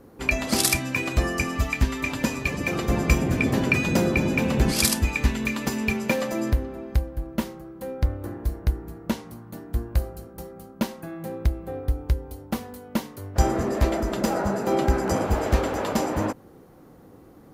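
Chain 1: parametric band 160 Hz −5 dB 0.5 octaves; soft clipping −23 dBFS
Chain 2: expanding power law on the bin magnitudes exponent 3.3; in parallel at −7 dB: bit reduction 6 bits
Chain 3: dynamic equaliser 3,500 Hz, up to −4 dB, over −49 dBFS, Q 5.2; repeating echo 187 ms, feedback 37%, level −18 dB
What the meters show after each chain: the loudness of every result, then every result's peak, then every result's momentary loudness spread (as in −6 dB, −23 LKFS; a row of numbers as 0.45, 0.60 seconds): −30.0, −23.5, −25.5 LKFS; −23.0, −5.5, −6.0 dBFS; 9, 11, 11 LU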